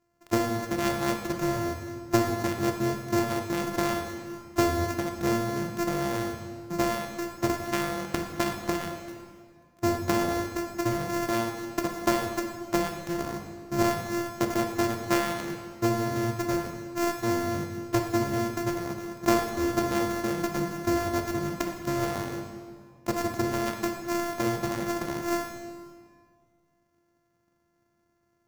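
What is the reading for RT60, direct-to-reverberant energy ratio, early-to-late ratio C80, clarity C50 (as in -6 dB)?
1.9 s, 3.5 dB, 7.0 dB, 5.5 dB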